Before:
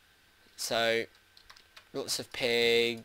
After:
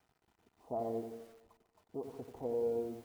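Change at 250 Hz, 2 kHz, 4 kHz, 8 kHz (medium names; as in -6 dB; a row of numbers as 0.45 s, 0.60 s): -4.5 dB, under -35 dB, under -35 dB, under -25 dB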